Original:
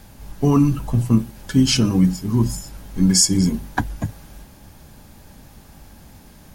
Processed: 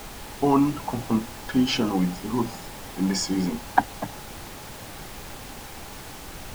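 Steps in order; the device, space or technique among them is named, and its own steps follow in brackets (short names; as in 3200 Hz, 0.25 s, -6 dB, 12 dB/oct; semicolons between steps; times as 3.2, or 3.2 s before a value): horn gramophone (BPF 290–3200 Hz; bell 810 Hz +10 dB 0.47 oct; wow and flutter; pink noise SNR 12 dB); gain -1 dB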